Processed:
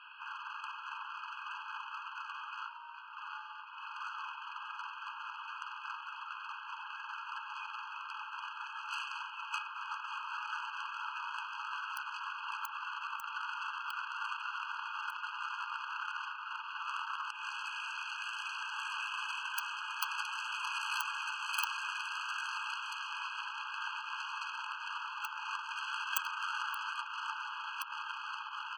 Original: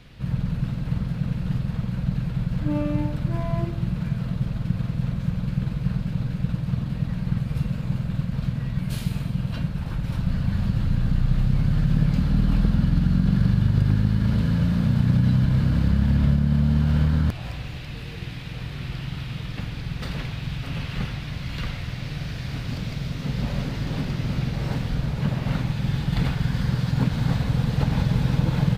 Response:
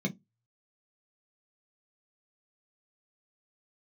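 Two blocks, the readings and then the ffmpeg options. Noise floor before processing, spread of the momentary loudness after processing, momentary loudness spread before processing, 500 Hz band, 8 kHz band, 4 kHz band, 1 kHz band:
−34 dBFS, 7 LU, 11 LU, below −40 dB, can't be measured, −3.0 dB, +2.5 dB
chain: -af "highpass=frequency=460:width_type=q:width=0.5412,highpass=frequency=460:width_type=q:width=1.307,lowpass=frequency=2600:width_type=q:width=0.5176,lowpass=frequency=2600:width_type=q:width=0.7071,lowpass=frequency=2600:width_type=q:width=1.932,afreqshift=-240,lowshelf=frequency=340:gain=11,acompressor=threshold=-36dB:ratio=20,aeval=exprs='0.0376*(cos(1*acos(clip(val(0)/0.0376,-1,1)))-cos(1*PI/2))+0.0188*(cos(2*acos(clip(val(0)/0.0376,-1,1)))-cos(2*PI/2))+0.00299*(cos(4*acos(clip(val(0)/0.0376,-1,1)))-cos(4*PI/2))+0.000596*(cos(8*acos(clip(val(0)/0.0376,-1,1)))-cos(8*PI/2))':channel_layout=same,crystalizer=i=4.5:c=0,aemphasis=mode=production:type=bsi,afftfilt=real='re*eq(mod(floor(b*sr/1024/830),2),1)':imag='im*eq(mod(floor(b*sr/1024/830),2),1)':win_size=1024:overlap=0.75,volume=4.5dB"

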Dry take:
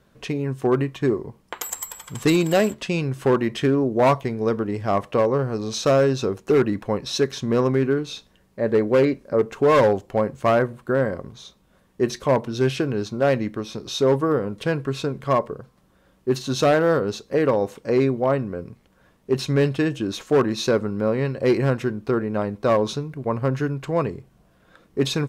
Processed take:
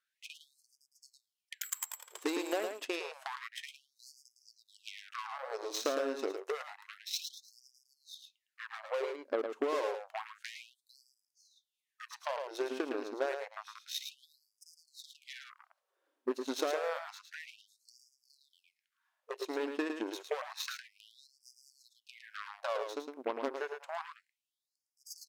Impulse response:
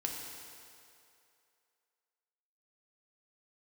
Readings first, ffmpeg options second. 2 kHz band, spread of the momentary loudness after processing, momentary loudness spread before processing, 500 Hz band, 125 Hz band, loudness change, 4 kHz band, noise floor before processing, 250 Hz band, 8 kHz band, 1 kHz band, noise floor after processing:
−13.0 dB, 18 LU, 10 LU, −18.5 dB, below −40 dB, −16.5 dB, −11.5 dB, −60 dBFS, −21.5 dB, −10.0 dB, −16.0 dB, below −85 dBFS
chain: -af "highpass=frequency=87:poles=1,acompressor=threshold=-23dB:ratio=16,aeval=exprs='0.266*(cos(1*acos(clip(val(0)/0.266,-1,1)))-cos(1*PI/2))+0.0944*(cos(5*acos(clip(val(0)/0.266,-1,1)))-cos(5*PI/2))+0.0944*(cos(7*acos(clip(val(0)/0.266,-1,1)))-cos(7*PI/2))':channel_layout=same,aecho=1:1:109:0.473,afftfilt=real='re*gte(b*sr/1024,230*pow(4800/230,0.5+0.5*sin(2*PI*0.29*pts/sr)))':imag='im*gte(b*sr/1024,230*pow(4800/230,0.5+0.5*sin(2*PI*0.29*pts/sr)))':win_size=1024:overlap=0.75,volume=-8.5dB"

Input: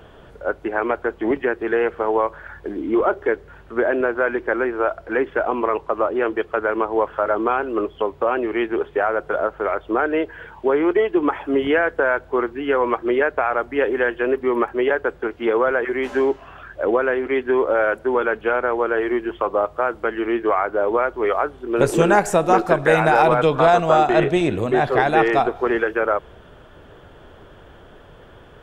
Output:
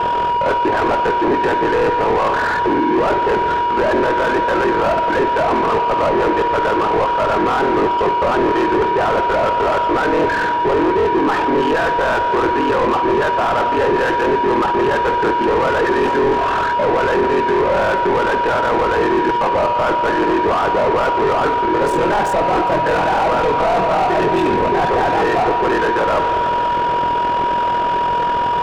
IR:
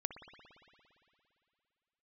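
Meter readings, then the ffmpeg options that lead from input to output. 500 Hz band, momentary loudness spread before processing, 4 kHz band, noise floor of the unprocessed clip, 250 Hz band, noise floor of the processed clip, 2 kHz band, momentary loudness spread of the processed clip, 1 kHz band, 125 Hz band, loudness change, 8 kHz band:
+2.5 dB, 8 LU, +9.0 dB, −46 dBFS, +3.0 dB, −17 dBFS, +3.0 dB, 1 LU, +8.5 dB, +3.5 dB, +4.5 dB, can't be measured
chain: -filter_complex "[0:a]areverse,acompressor=threshold=-29dB:ratio=16,areverse,aeval=exprs='val(0)*sin(2*PI*21*n/s)':channel_layout=same,asoftclip=type=tanh:threshold=-24dB,aeval=exprs='val(0)+0.00562*sin(2*PI*960*n/s)':channel_layout=same,asuperstop=centerf=2100:order=12:qfactor=4.7,asplit=2[link_01][link_02];[1:a]atrim=start_sample=2205[link_03];[link_02][link_03]afir=irnorm=-1:irlink=0,volume=-0.5dB[link_04];[link_01][link_04]amix=inputs=2:normalize=0,asplit=2[link_05][link_06];[link_06]highpass=frequency=720:poles=1,volume=31dB,asoftclip=type=tanh:threshold=-15.5dB[link_07];[link_05][link_07]amix=inputs=2:normalize=0,lowpass=frequency=1100:poles=1,volume=-6dB,volume=8.5dB"

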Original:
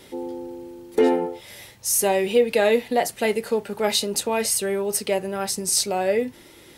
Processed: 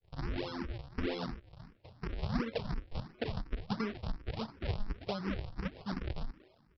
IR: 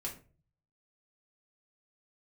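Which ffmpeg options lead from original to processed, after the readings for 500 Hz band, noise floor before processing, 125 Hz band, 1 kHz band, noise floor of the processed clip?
−22.0 dB, −49 dBFS, +1.5 dB, −17.5 dB, −67 dBFS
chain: -filter_complex "[0:a]acompressor=threshold=-31dB:ratio=5,agate=range=-33dB:threshold=-35dB:ratio=3:detection=peak,highshelf=frequency=4100:gain=-8.5,flanger=delay=9:depth=4.6:regen=-65:speed=1:shape=triangular,bass=frequency=250:gain=6,treble=frequency=4000:gain=8,asplit=2[link_01][link_02];[link_02]asplit=3[link_03][link_04][link_05];[link_03]adelay=113,afreqshift=62,volume=-24dB[link_06];[link_04]adelay=226,afreqshift=124,volume=-32dB[link_07];[link_05]adelay=339,afreqshift=186,volume=-39.9dB[link_08];[link_06][link_07][link_08]amix=inputs=3:normalize=0[link_09];[link_01][link_09]amix=inputs=2:normalize=0,acrossover=split=400[link_10][link_11];[link_11]acompressor=threshold=-50dB:ratio=4[link_12];[link_10][link_12]amix=inputs=2:normalize=0,aresample=11025,acrusher=samples=30:mix=1:aa=0.000001:lfo=1:lforange=48:lforate=1.5,aresample=44100,asplit=2[link_13][link_14];[link_14]afreqshift=2.8[link_15];[link_13][link_15]amix=inputs=2:normalize=1,volume=7.5dB"

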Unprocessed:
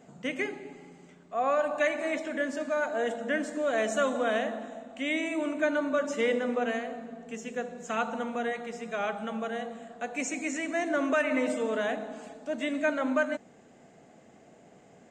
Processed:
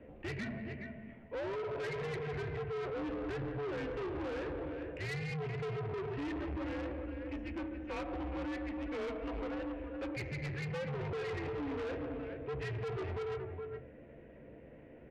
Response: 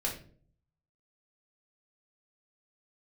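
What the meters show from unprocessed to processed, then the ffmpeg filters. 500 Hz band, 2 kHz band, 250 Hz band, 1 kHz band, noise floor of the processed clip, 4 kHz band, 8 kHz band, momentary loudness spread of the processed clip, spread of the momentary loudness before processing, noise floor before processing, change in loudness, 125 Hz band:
−9.0 dB, −12.5 dB, −7.5 dB, −12.0 dB, −54 dBFS, −9.5 dB, below −15 dB, 7 LU, 11 LU, −57 dBFS, −9.0 dB, +13.0 dB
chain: -filter_complex "[0:a]acrusher=bits=5:mode=log:mix=0:aa=0.000001,equalizer=frequency=1400:width=2:gain=-12,bandreject=frequency=50:width_type=h:width=6,bandreject=frequency=100:width_type=h:width=6,bandreject=frequency=150:width_type=h:width=6,bandreject=frequency=200:width_type=h:width=6,bandreject=frequency=250:width_type=h:width=6,bandreject=frequency=300:width_type=h:width=6,asplit=2[link_01][link_02];[link_02]adelay=13,volume=-8dB[link_03];[link_01][link_03]amix=inputs=2:normalize=0,asplit=2[link_04][link_05];[1:a]atrim=start_sample=2205,adelay=25[link_06];[link_05][link_06]afir=irnorm=-1:irlink=0,volume=-23dB[link_07];[link_04][link_07]amix=inputs=2:normalize=0,alimiter=level_in=1dB:limit=-24dB:level=0:latency=1:release=147,volume=-1dB,aecho=1:1:172|419:0.1|0.299,highpass=frequency=260:width_type=q:width=0.5412,highpass=frequency=260:width_type=q:width=1.307,lowpass=frequency=2700:width_type=q:width=0.5176,lowpass=frequency=2700:width_type=q:width=0.7071,lowpass=frequency=2700:width_type=q:width=1.932,afreqshift=-170,asoftclip=type=tanh:threshold=-39.5dB,volume=3.5dB"

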